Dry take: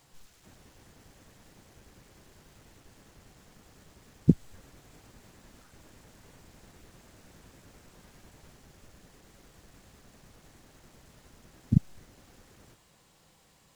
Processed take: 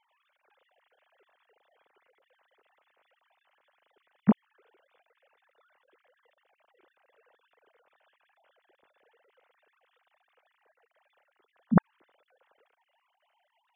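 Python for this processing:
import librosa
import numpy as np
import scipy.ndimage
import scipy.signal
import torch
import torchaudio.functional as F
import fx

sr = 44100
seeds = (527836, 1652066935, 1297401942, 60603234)

y = fx.sine_speech(x, sr)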